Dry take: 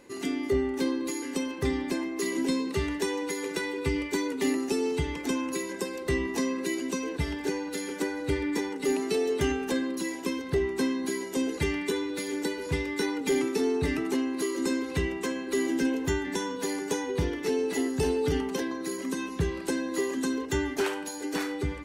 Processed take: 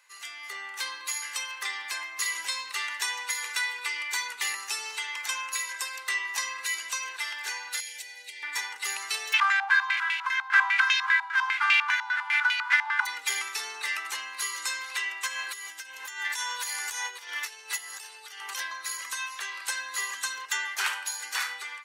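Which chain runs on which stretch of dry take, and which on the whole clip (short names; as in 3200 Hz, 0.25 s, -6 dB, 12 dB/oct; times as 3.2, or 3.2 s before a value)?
7.8–8.43 bell 95 Hz -15 dB 2.4 oct + compressor 12:1, threshold -35 dBFS + Butterworth band-stop 1200 Hz, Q 0.83
9.32–13.05 spectral whitening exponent 0.1 + Chebyshev band-stop 120–750 Hz, order 5 + stepped low-pass 10 Hz 840–2600 Hz
15.27–18.6 high shelf 8200 Hz +6 dB + negative-ratio compressor -34 dBFS
whole clip: HPF 1100 Hz 24 dB/oct; AGC gain up to 8 dB; gain -1.5 dB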